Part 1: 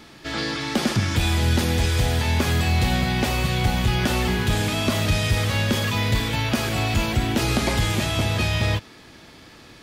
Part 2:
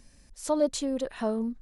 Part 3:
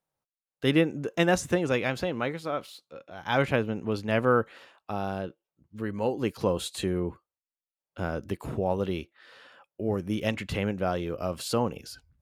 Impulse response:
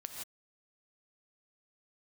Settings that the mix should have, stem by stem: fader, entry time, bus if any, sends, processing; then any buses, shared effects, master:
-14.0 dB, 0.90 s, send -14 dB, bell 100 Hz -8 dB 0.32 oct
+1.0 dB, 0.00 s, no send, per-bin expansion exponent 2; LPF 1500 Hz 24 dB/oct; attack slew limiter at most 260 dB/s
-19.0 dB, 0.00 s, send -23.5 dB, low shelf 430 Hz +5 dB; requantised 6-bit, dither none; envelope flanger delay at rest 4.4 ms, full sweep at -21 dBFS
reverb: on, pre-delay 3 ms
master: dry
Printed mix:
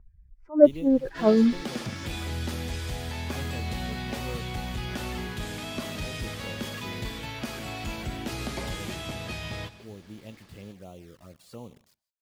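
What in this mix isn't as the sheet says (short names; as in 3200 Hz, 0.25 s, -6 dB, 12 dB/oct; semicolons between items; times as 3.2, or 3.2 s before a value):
stem 2 +1.0 dB -> +12.5 dB; reverb return +8.0 dB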